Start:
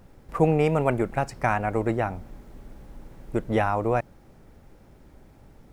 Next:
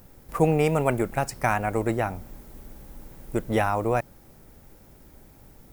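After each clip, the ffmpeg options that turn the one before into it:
-af "aemphasis=mode=production:type=50fm"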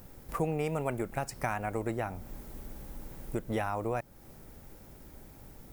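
-af "acompressor=threshold=-36dB:ratio=2"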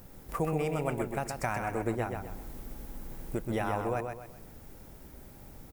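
-af "aecho=1:1:128|256|384|512:0.531|0.191|0.0688|0.0248"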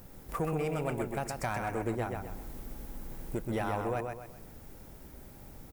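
-af "asoftclip=type=tanh:threshold=-23dB"

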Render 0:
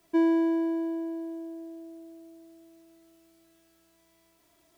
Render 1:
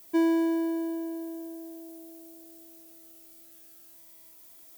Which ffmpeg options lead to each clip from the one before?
-af "aemphasis=mode=production:type=75fm"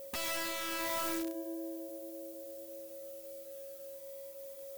-af "aeval=exprs='(mod(37.6*val(0)+1,2)-1)/37.6':c=same,aeval=exprs='val(0)+0.00562*sin(2*PI*550*n/s)':c=same,flanger=delay=0.3:depth=1.5:regen=-71:speed=1.8:shape=triangular,volume=4dB"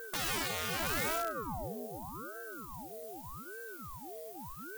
-af "aeval=exprs='val(0)*sin(2*PI*550*n/s+550*0.85/0.83*sin(2*PI*0.83*n/s))':c=same,volume=4.5dB"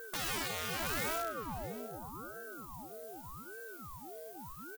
-af "aecho=1:1:663:0.141,volume=-2dB"

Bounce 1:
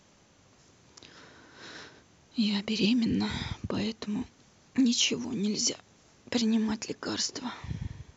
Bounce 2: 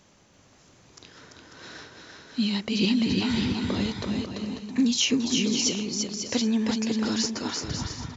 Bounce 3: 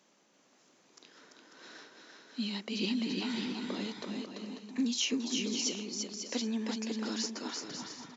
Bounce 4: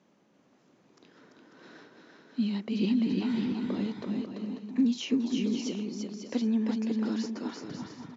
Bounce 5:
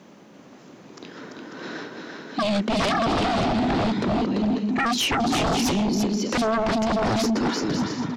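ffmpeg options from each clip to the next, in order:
-af "aecho=1:1:340|544|666.4|739.8|783.9:0.631|0.398|0.251|0.158|0.1,volume=2dB"
-af "highpass=f=210:w=0.5412,highpass=f=210:w=1.3066,volume=-8dB"
-af "aemphasis=mode=reproduction:type=riaa"
-af "aeval=exprs='0.15*sin(PI/2*6.31*val(0)/0.15)':c=same,volume=-2.5dB"

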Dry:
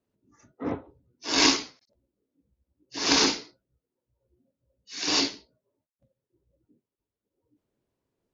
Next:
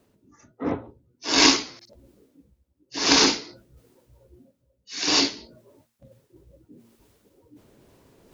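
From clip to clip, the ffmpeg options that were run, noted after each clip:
-af "bandreject=f=115.2:t=h:w=4,bandreject=f=230.4:t=h:w=4,bandreject=f=345.6:t=h:w=4,areverse,acompressor=mode=upward:threshold=-42dB:ratio=2.5,areverse,volume=4dB"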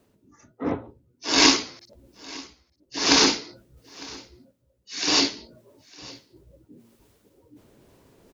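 -af "aecho=1:1:905:0.0794"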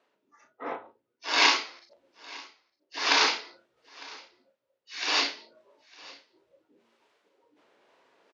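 -filter_complex "[0:a]highpass=730,lowpass=3.3k,asplit=2[a][b];[b]adelay=35,volume=-7dB[c];[a][c]amix=inputs=2:normalize=0"

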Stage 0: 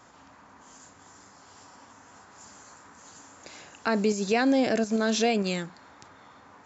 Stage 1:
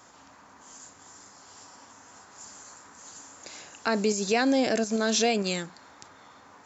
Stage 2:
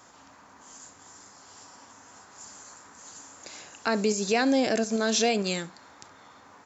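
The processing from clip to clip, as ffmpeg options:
-af "bass=f=250:g=-3,treble=f=4k:g=6"
-af "aecho=1:1:70:0.0891"

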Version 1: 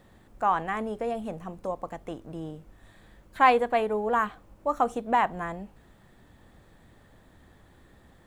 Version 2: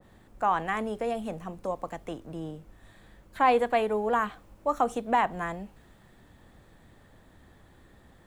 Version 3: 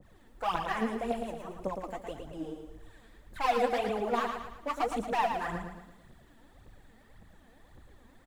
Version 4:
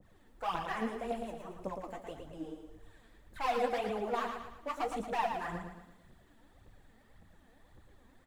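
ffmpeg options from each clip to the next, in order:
-filter_complex "[0:a]acrossover=split=210|900[a][b][c];[c]alimiter=limit=-22dB:level=0:latency=1:release=105[d];[a][b][d]amix=inputs=3:normalize=0,adynamicequalizer=threshold=0.01:dfrequency=1700:dqfactor=0.7:tfrequency=1700:tqfactor=0.7:attack=5:release=100:ratio=0.375:range=2:mode=boostabove:tftype=highshelf"
-af "volume=22.5dB,asoftclip=hard,volume=-22.5dB,aphaser=in_gain=1:out_gain=1:delay=4.6:decay=0.74:speed=1.8:type=triangular,aecho=1:1:113|226|339|452|565:0.501|0.226|0.101|0.0457|0.0206,volume=-6.5dB"
-af "flanger=delay=9.8:depth=2.7:regen=-62:speed=0.77:shape=sinusoidal"

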